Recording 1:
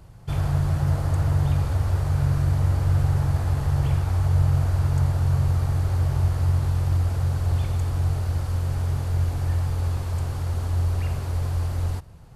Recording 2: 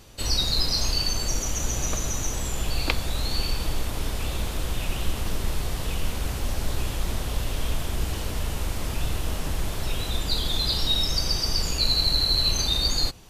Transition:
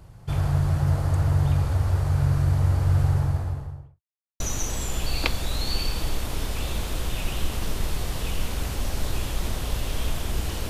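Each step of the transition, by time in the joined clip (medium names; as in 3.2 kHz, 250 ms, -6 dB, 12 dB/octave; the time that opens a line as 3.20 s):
recording 1
3.04–4.01 s: studio fade out
4.01–4.40 s: mute
4.40 s: go over to recording 2 from 2.04 s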